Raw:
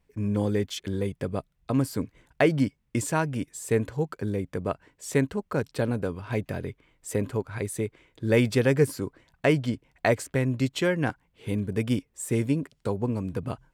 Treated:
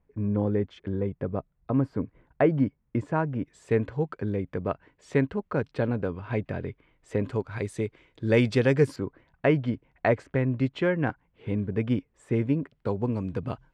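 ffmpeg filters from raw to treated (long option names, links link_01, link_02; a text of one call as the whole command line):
ffmpeg -i in.wav -af "asetnsamples=nb_out_samples=441:pad=0,asendcmd='3.46 lowpass f 2800;7.25 lowpass f 5000;8.96 lowpass f 2200;12.87 lowpass f 4400',lowpass=1400" out.wav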